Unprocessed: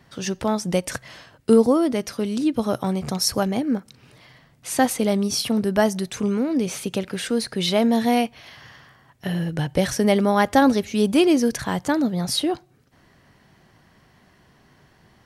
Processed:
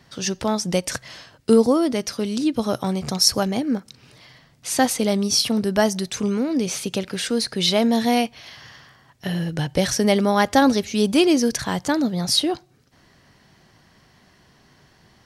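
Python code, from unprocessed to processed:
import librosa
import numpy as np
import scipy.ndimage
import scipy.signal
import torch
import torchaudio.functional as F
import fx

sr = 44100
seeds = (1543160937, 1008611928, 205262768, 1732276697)

y = fx.peak_eq(x, sr, hz=5100.0, db=6.5, octaves=1.3)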